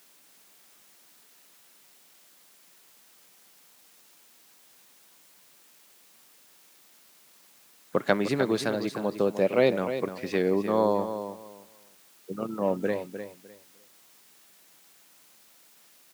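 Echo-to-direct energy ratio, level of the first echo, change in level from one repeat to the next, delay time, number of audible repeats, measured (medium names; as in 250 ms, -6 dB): -10.0 dB, -10.0 dB, -13.5 dB, 303 ms, 2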